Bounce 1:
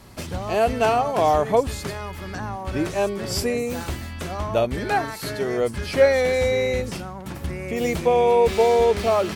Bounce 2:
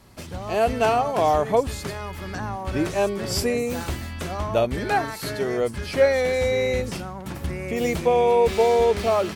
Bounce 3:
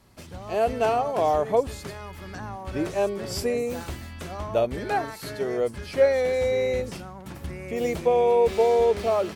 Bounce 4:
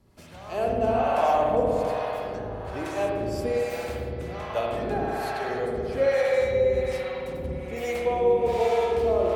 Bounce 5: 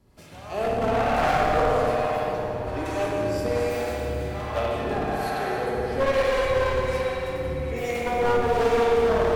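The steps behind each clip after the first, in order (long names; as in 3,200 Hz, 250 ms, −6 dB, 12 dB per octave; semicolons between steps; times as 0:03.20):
automatic gain control gain up to 6 dB; level −5.5 dB
dynamic equaliser 510 Hz, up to +5 dB, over −31 dBFS, Q 1; level −6 dB
spring reverb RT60 3.7 s, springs 56 ms, chirp 50 ms, DRR −4 dB; two-band tremolo in antiphase 1.2 Hz, depth 70%, crossover 570 Hz; level −1.5 dB
wavefolder on the positive side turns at −21.5 dBFS; dense smooth reverb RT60 3 s, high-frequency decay 0.9×, DRR 0 dB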